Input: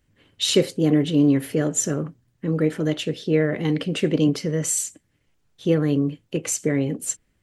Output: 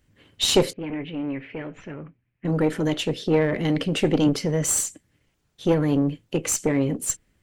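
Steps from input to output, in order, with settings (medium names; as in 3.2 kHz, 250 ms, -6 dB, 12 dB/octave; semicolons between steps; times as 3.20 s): single-diode clipper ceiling -19 dBFS; 0.73–2.45 s: four-pole ladder low-pass 2.6 kHz, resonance 70%; trim +2.5 dB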